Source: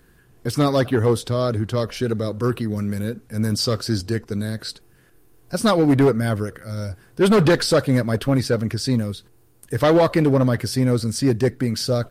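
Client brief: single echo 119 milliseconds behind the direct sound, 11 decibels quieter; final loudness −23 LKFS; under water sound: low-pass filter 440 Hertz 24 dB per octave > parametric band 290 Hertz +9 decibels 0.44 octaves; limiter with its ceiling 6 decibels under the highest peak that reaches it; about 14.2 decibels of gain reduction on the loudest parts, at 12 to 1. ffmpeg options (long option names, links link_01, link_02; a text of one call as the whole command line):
ffmpeg -i in.wav -af "acompressor=threshold=-27dB:ratio=12,alimiter=limit=-23.5dB:level=0:latency=1,lowpass=frequency=440:width=0.5412,lowpass=frequency=440:width=1.3066,equalizer=frequency=290:width_type=o:width=0.44:gain=9,aecho=1:1:119:0.282,volume=8.5dB" out.wav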